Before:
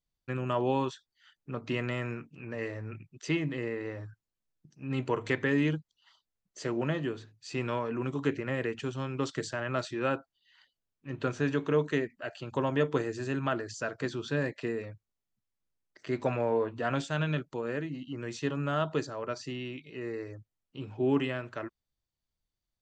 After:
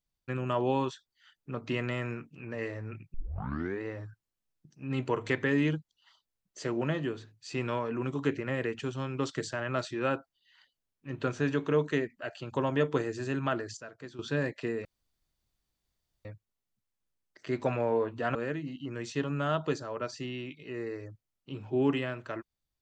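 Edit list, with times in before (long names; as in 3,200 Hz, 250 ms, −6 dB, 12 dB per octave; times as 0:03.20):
0:03.14: tape start 0.67 s
0:13.77–0:14.19: clip gain −11.5 dB
0:14.85: splice in room tone 1.40 s
0:16.95–0:17.62: remove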